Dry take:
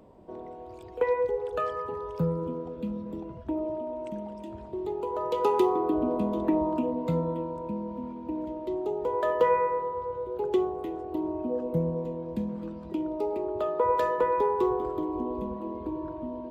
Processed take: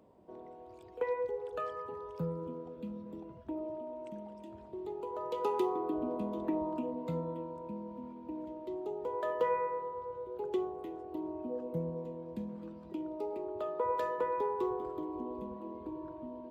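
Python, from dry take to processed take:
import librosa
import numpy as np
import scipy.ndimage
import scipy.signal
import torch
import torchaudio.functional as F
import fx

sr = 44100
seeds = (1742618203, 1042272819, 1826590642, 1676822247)

y = fx.highpass(x, sr, hz=100.0, slope=6)
y = y * 10.0 ** (-8.0 / 20.0)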